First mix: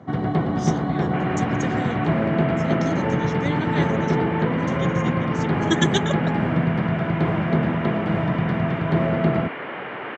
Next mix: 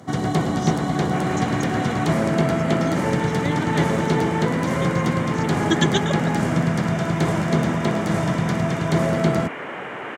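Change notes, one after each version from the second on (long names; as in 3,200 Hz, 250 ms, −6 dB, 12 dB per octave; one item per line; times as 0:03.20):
first sound: remove high-frequency loss of the air 420 metres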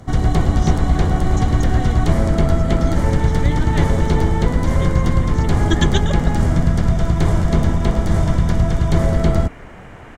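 second sound −11.0 dB
master: remove high-pass filter 140 Hz 24 dB per octave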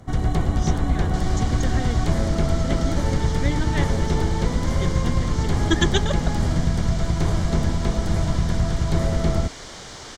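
first sound −5.5 dB
second sound: remove Chebyshev low-pass filter 2,700 Hz, order 5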